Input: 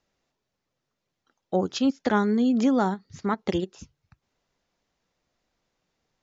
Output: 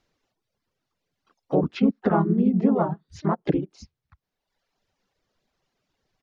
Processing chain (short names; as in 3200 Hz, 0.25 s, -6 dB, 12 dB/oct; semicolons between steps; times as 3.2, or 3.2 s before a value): harmoniser -4 st -1 dB, -3 st -3 dB, +7 st -17 dB; reverb removal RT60 1.1 s; treble ducked by the level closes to 1100 Hz, closed at -20 dBFS